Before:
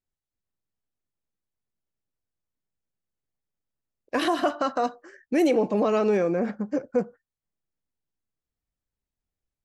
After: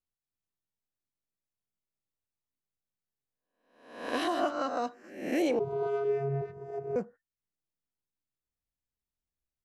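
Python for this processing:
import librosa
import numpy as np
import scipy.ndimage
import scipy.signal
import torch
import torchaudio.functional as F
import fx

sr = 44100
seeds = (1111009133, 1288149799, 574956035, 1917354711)

y = fx.spec_swells(x, sr, rise_s=0.66)
y = fx.vocoder(y, sr, bands=16, carrier='square', carrier_hz=138.0, at=(5.59, 6.96))
y = y * librosa.db_to_amplitude(-8.5)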